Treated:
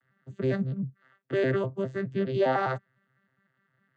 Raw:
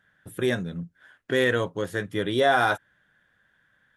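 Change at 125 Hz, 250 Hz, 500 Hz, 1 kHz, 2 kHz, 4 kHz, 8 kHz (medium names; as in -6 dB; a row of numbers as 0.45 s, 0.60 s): +1.5 dB, -1.5 dB, -2.5 dB, -5.5 dB, -10.5 dB, -14.0 dB, under -15 dB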